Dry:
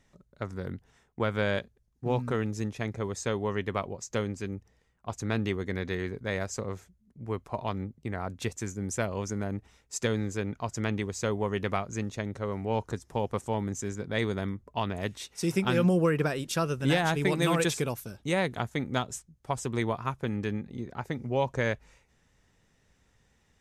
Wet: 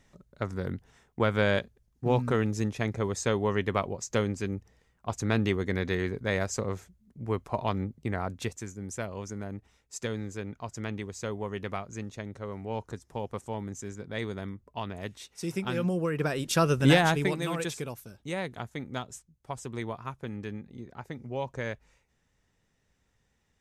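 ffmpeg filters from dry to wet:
-af "volume=5.31,afade=t=out:st=8.14:d=0.53:silence=0.398107,afade=t=in:st=16.1:d=0.7:silence=0.266073,afade=t=out:st=16.8:d=0.61:silence=0.237137"

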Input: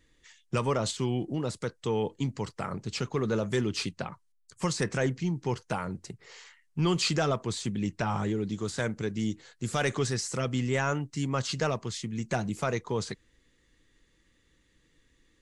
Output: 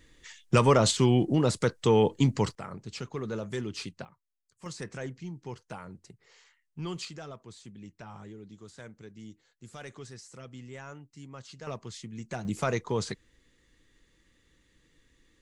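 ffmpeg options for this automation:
-af "asetnsamples=n=441:p=0,asendcmd='2.55 volume volume -6dB;4.05 volume volume -16.5dB;4.66 volume volume -10dB;7.05 volume volume -16dB;11.67 volume volume -7dB;12.45 volume volume 1dB',volume=2.24"

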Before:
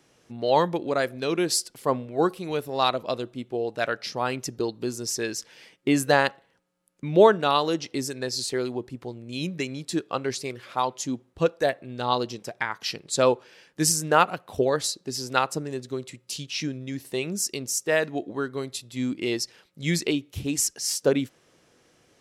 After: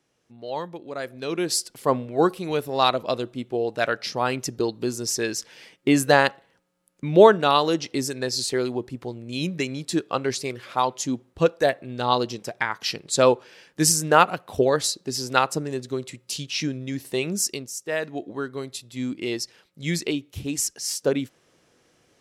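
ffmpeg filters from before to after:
-af "volume=2.99,afade=t=in:st=0.87:d=1.05:silence=0.223872,afade=t=out:st=17.48:d=0.22:silence=0.298538,afade=t=in:st=17.7:d=0.58:silence=0.473151"

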